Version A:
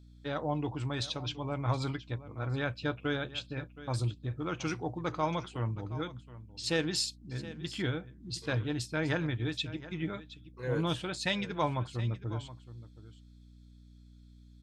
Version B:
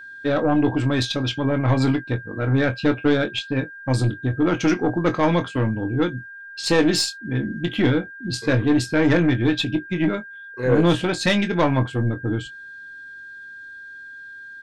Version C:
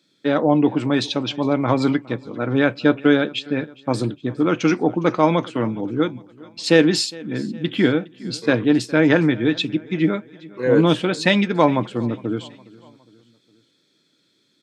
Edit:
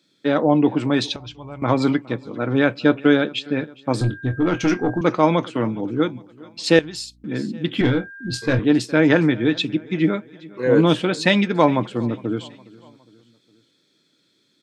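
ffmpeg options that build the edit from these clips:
-filter_complex "[0:a]asplit=2[s0][s1];[1:a]asplit=2[s2][s3];[2:a]asplit=5[s4][s5][s6][s7][s8];[s4]atrim=end=1.162[s9];[s0]atrim=start=1.158:end=1.622[s10];[s5]atrim=start=1.618:end=4.012[s11];[s2]atrim=start=4.008:end=5.012[s12];[s6]atrim=start=5.008:end=6.792[s13];[s1]atrim=start=6.788:end=7.242[s14];[s7]atrim=start=7.238:end=7.812[s15];[s3]atrim=start=7.808:end=8.592[s16];[s8]atrim=start=8.588[s17];[s9][s10]acrossfade=d=0.004:c1=hsin:c2=hsin[s18];[s18][s11]acrossfade=d=0.004:c1=hsin:c2=hsin[s19];[s19][s12]acrossfade=d=0.004:c1=hsin:c2=hsin[s20];[s20][s13]acrossfade=d=0.004:c1=hsin:c2=hsin[s21];[s21][s14]acrossfade=d=0.004:c1=hsin:c2=hsin[s22];[s22][s15]acrossfade=d=0.004:c1=hsin:c2=hsin[s23];[s23][s16]acrossfade=d=0.004:c1=hsin:c2=hsin[s24];[s24][s17]acrossfade=d=0.004:c1=hsin:c2=hsin"

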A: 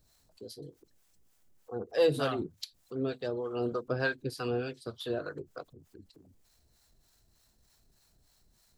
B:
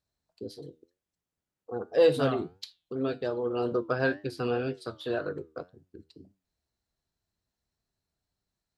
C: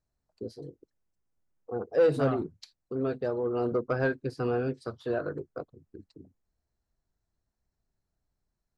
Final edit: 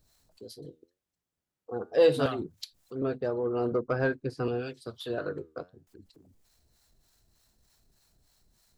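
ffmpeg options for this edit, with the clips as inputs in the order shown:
-filter_complex "[1:a]asplit=2[s0][s1];[0:a]asplit=4[s2][s3][s4][s5];[s2]atrim=end=0.652[s6];[s0]atrim=start=0.648:end=2.262[s7];[s3]atrim=start=2.258:end=3.022[s8];[2:a]atrim=start=3.018:end=4.482[s9];[s4]atrim=start=4.478:end=5.182[s10];[s1]atrim=start=5.178:end=5.872[s11];[s5]atrim=start=5.868[s12];[s6][s7]acrossfade=d=0.004:c1=hsin:c2=hsin[s13];[s13][s8]acrossfade=d=0.004:c1=hsin:c2=hsin[s14];[s14][s9]acrossfade=d=0.004:c1=hsin:c2=hsin[s15];[s15][s10]acrossfade=d=0.004:c1=hsin:c2=hsin[s16];[s16][s11]acrossfade=d=0.004:c1=hsin:c2=hsin[s17];[s17][s12]acrossfade=d=0.004:c1=hsin:c2=hsin"

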